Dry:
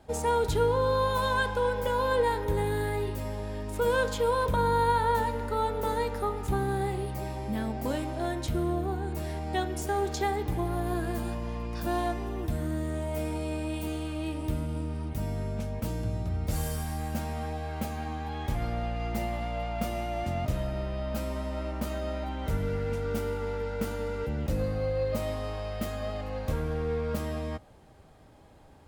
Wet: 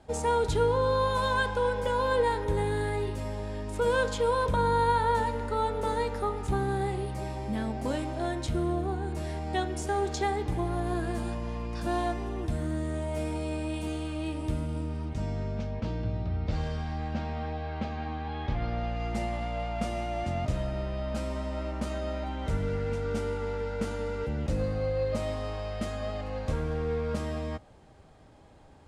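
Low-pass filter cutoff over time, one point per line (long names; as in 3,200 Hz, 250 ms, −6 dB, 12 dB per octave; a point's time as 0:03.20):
low-pass filter 24 dB per octave
0:14.67 10,000 Hz
0:15.98 4,500 Hz
0:18.61 4,500 Hz
0:19.14 9,300 Hz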